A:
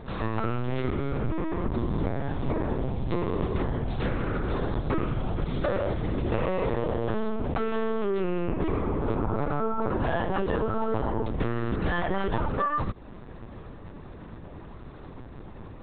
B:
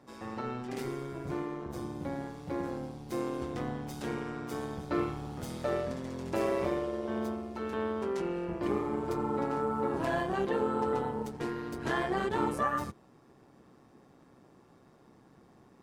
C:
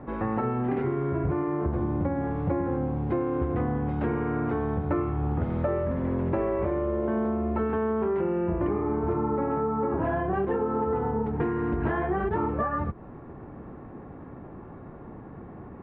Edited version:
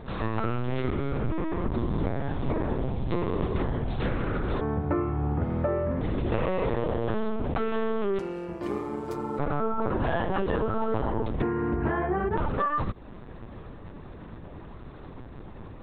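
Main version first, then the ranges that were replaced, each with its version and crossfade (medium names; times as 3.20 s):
A
4.61–6.01 s: from C
8.19–9.39 s: from B
11.42–12.37 s: from C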